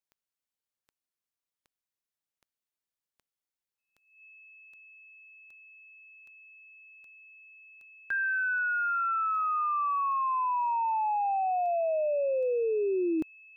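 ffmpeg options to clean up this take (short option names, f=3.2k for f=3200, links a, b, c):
-af "adeclick=t=4,bandreject=f=2.6k:w=30"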